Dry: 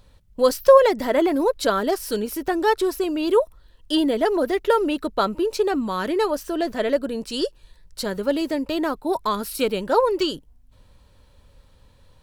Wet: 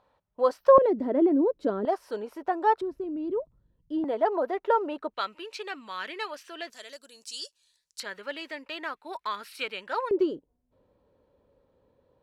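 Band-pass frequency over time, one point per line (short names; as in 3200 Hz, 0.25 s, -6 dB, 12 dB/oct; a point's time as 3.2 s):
band-pass, Q 1.6
850 Hz
from 0.78 s 300 Hz
from 1.85 s 830 Hz
from 2.81 s 160 Hz
from 4.04 s 840 Hz
from 5.14 s 2400 Hz
from 6.7 s 6700 Hz
from 8 s 2100 Hz
from 10.11 s 430 Hz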